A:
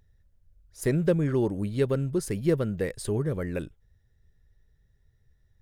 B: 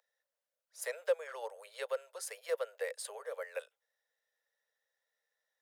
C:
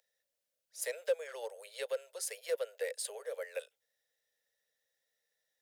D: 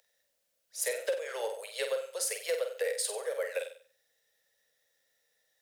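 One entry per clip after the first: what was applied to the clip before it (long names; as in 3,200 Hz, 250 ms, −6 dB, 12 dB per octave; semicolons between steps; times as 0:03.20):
Butterworth high-pass 480 Hz 96 dB per octave; level −4 dB
parametric band 1,100 Hz −12.5 dB 1.3 octaves; in parallel at −4 dB: soft clipping −37 dBFS, distortion −8 dB; on the sum: level +1 dB
downward compressor, threshold −36 dBFS, peak gain reduction 9.5 dB; on a send: flutter between parallel walls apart 8.1 metres, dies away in 0.44 s; on the sum: level +7.5 dB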